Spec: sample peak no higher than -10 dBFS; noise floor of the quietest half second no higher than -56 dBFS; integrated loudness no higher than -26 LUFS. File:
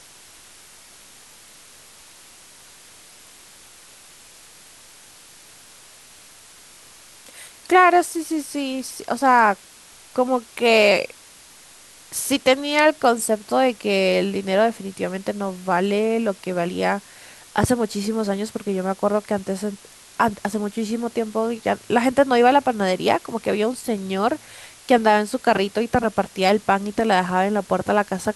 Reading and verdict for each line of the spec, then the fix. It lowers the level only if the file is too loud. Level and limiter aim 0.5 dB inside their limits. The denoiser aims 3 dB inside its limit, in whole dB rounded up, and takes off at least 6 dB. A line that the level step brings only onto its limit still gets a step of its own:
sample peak -4.5 dBFS: fail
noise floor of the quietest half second -47 dBFS: fail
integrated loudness -20.5 LUFS: fail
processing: noise reduction 6 dB, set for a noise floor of -47 dBFS; trim -6 dB

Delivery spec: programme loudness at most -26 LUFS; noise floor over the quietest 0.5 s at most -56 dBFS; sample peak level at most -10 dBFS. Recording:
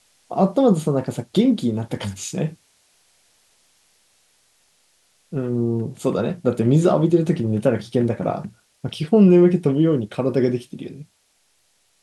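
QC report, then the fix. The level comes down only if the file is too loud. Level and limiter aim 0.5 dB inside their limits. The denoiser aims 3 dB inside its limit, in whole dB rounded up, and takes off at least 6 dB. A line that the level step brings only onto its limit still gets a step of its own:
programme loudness -20.0 LUFS: fail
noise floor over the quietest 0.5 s -64 dBFS: pass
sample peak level -4.0 dBFS: fail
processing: trim -6.5 dB

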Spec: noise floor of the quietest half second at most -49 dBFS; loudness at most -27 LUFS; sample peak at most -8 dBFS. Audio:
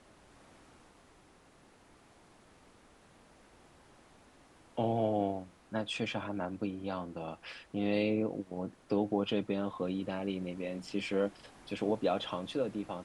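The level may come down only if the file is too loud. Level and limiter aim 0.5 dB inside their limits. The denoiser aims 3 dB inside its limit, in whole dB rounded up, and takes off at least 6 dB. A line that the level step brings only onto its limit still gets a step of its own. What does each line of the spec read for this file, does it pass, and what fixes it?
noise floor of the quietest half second -62 dBFS: pass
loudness -35.5 LUFS: pass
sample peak -18.5 dBFS: pass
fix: none needed

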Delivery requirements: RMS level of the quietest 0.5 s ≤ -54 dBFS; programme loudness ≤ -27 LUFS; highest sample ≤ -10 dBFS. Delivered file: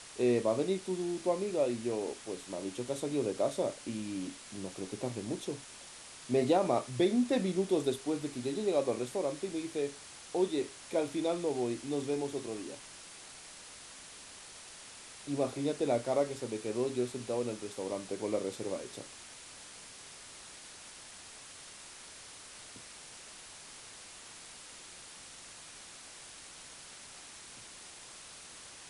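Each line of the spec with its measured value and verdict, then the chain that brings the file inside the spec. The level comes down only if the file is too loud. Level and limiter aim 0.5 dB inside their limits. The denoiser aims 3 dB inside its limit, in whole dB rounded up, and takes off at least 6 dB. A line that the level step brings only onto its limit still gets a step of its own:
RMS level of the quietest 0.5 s -51 dBFS: fail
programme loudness -34.0 LUFS: pass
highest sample -16.0 dBFS: pass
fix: noise reduction 6 dB, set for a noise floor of -51 dBFS

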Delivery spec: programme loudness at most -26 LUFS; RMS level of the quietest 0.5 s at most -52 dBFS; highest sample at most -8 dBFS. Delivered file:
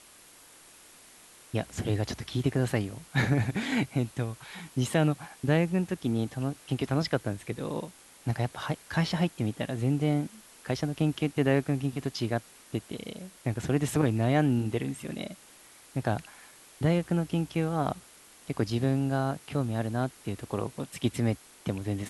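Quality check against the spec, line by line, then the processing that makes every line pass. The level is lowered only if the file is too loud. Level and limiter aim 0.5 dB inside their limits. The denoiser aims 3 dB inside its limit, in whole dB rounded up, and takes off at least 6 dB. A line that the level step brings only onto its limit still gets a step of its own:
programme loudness -30.0 LUFS: pass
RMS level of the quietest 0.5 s -54 dBFS: pass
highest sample -12.0 dBFS: pass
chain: none needed

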